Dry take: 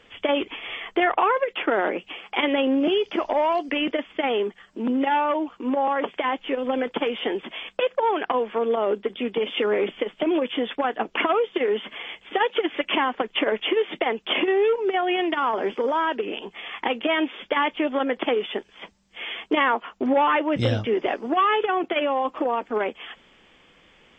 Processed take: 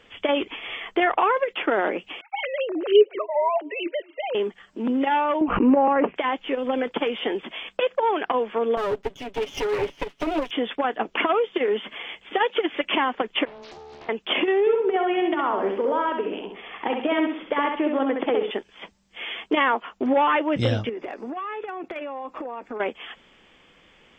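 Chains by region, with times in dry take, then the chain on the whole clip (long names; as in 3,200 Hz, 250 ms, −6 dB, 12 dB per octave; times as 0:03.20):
0:02.21–0:04.35: three sine waves on the formant tracks + delay with a low-pass on its return 234 ms, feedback 33%, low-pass 420 Hz, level −21 dB
0:05.41–0:06.16: elliptic low-pass filter 2,700 Hz + low-shelf EQ 470 Hz +11.5 dB + background raised ahead of every attack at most 58 dB per second
0:08.77–0:10.51: lower of the sound and its delayed copy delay 7.1 ms + expander for the loud parts, over −33 dBFS
0:13.45–0:14.09: stiff-string resonator 70 Hz, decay 0.82 s, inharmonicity 0.002 + downward compressor 12 to 1, threshold −38 dBFS + highs frequency-modulated by the lows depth 0.73 ms
0:14.60–0:18.51: high-shelf EQ 2,200 Hz −11 dB + repeating echo 66 ms, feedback 37%, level −4.5 dB
0:20.89–0:22.80: notch filter 3,100 Hz, Q 5.1 + downward compressor 8 to 1, threshold −29 dBFS + gain into a clipping stage and back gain 23.5 dB
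whole clip: no processing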